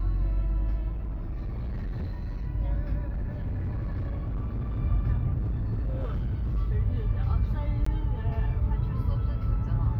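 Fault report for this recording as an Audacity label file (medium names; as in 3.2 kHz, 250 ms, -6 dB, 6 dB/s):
0.910000	2.460000	clipped -29 dBFS
3.080000	4.800000	clipped -27.5 dBFS
5.370000	6.580000	clipped -25.5 dBFS
7.850000	7.860000	dropout 14 ms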